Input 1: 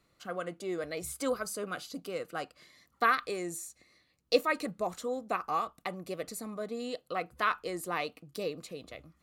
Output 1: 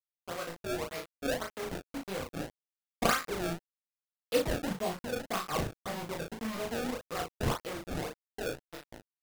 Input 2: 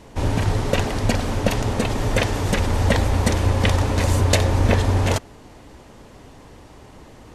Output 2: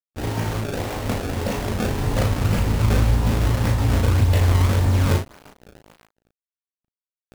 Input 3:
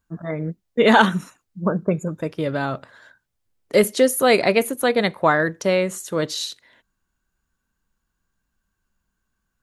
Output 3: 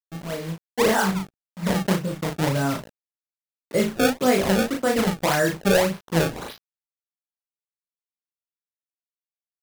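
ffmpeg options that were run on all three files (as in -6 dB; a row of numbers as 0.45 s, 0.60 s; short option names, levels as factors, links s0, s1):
-filter_complex "[0:a]lowpass=3500,lowshelf=f=120:g=-8.5,acrossover=split=190|2300[s0][s1][s2];[s0]dynaudnorm=f=130:g=31:m=5.31[s3];[s3][s1][s2]amix=inputs=3:normalize=0,alimiter=limit=0.376:level=0:latency=1:release=76,aresample=11025,acrusher=bits=5:mix=0:aa=0.000001,aresample=44100,flanger=delay=17:depth=4.9:speed=0.3,acrusher=samples=25:mix=1:aa=0.000001:lfo=1:lforange=40:lforate=1.8,asplit=2[s4][s5];[s5]adelay=36,volume=0.596[s6];[s4][s6]amix=inputs=2:normalize=0"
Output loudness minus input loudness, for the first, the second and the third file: -1.0 LU, -0.5 LU, -2.5 LU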